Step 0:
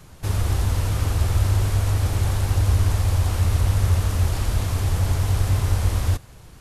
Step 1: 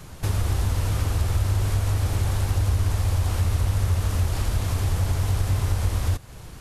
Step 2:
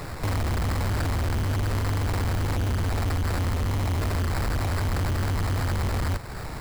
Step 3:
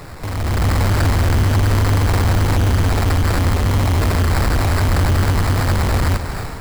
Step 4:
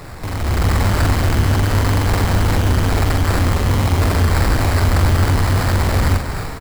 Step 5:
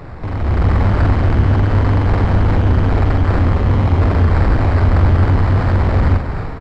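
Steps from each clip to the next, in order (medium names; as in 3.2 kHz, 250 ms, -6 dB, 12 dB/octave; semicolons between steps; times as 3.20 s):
compression 2:1, threshold -29 dBFS, peak gain reduction 8.5 dB; trim +4.5 dB
treble shelf 6.4 kHz +12 dB; sample-rate reducer 3.1 kHz, jitter 0%; saturation -29 dBFS, distortion -7 dB; trim +6 dB
level rider gain up to 9.5 dB; on a send: two-band feedback delay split 460 Hz, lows 150 ms, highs 227 ms, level -12 dB
doubling 44 ms -6 dB
tape spacing loss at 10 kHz 33 dB; trim +3 dB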